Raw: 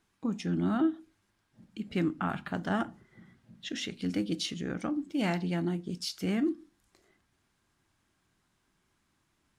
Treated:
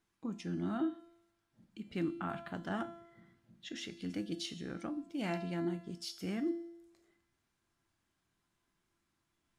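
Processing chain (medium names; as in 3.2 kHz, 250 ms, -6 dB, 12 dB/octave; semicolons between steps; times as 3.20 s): feedback comb 340 Hz, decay 0.87 s, mix 80%; trim +5.5 dB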